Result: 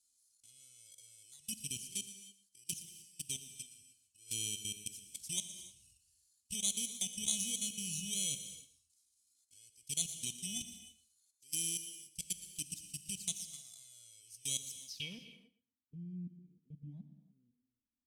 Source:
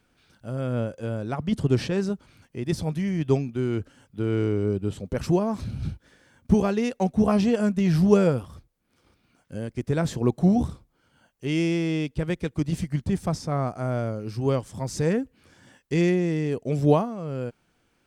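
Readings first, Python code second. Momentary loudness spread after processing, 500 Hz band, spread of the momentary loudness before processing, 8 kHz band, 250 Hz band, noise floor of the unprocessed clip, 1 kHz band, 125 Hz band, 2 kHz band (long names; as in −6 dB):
21 LU, −39.0 dB, 12 LU, +8.5 dB, −28.0 dB, −69 dBFS, below −35 dB, −27.5 dB, −17.0 dB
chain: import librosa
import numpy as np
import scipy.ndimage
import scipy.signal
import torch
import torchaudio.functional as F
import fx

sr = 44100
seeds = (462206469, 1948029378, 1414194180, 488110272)

p1 = fx.bit_reversed(x, sr, seeds[0], block=16)
p2 = fx.level_steps(p1, sr, step_db=24)
p3 = fx.filter_sweep_lowpass(p2, sr, from_hz=7600.0, to_hz=230.0, start_s=14.85, end_s=15.45, q=3.9)
p4 = scipy.signal.lfilter([1.0, -0.97], [1.0], p3)
p5 = fx.env_flanger(p4, sr, rest_ms=3.0, full_db=-39.5)
p6 = fx.band_shelf(p5, sr, hz=820.0, db=-15.5, octaves=2.9)
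p7 = p6 + fx.echo_feedback(p6, sr, ms=117, feedback_pct=15, wet_db=-16, dry=0)
p8 = fx.rev_gated(p7, sr, seeds[1], gate_ms=330, shape='flat', drr_db=9.5)
y = F.gain(torch.from_numpy(p8), 5.5).numpy()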